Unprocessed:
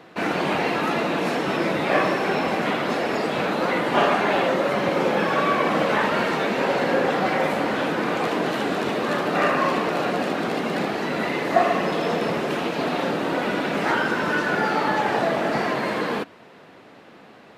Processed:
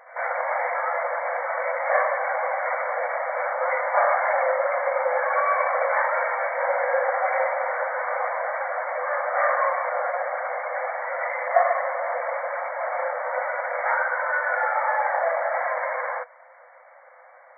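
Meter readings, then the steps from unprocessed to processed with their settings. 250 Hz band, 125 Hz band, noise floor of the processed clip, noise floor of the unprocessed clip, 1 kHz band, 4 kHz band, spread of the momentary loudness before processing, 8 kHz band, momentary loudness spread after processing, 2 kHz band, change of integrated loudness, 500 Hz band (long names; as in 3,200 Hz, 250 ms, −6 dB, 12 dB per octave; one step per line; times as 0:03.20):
below −40 dB, below −40 dB, −50 dBFS, −48 dBFS, 0.0 dB, below −40 dB, 4 LU, below −40 dB, 6 LU, −0.5 dB, −2.0 dB, −2.0 dB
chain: brick-wall band-pass 490–2,300 Hz
echo ahead of the sound 98 ms −18.5 dB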